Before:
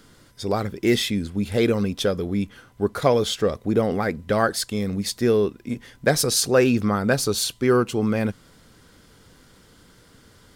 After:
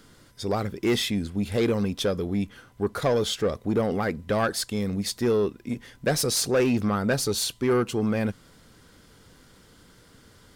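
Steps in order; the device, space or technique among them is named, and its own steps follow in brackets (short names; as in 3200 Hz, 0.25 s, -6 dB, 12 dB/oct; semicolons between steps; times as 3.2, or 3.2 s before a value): saturation between pre-emphasis and de-emphasis (high shelf 7500 Hz +6 dB; soft clip -14.5 dBFS, distortion -15 dB; high shelf 7500 Hz -6 dB); gain -1.5 dB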